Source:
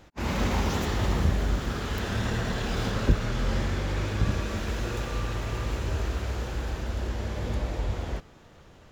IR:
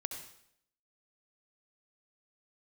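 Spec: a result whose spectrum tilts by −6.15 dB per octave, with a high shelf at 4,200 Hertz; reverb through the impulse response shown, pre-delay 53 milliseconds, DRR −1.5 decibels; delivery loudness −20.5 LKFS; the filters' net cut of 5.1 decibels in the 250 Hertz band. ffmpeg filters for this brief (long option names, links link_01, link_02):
-filter_complex "[0:a]equalizer=frequency=250:width_type=o:gain=-7,highshelf=frequency=4200:gain=-8,asplit=2[link_01][link_02];[1:a]atrim=start_sample=2205,adelay=53[link_03];[link_02][link_03]afir=irnorm=-1:irlink=0,volume=1.5dB[link_04];[link_01][link_04]amix=inputs=2:normalize=0,volume=7dB"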